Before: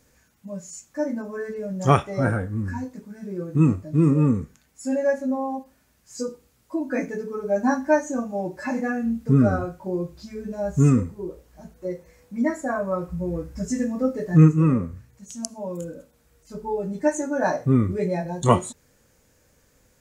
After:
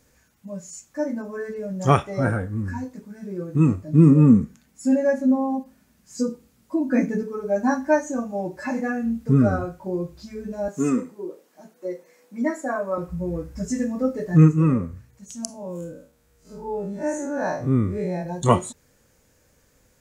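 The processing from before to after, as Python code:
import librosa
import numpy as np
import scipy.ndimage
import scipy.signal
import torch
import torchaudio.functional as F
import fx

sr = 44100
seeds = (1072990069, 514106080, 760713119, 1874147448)

y = fx.peak_eq(x, sr, hz=210.0, db=11.5, octaves=0.77, at=(3.88, 7.23))
y = fx.highpass(y, sr, hz=230.0, slope=24, at=(10.68, 12.98))
y = fx.spec_blur(y, sr, span_ms=99.0, at=(15.47, 18.21), fade=0.02)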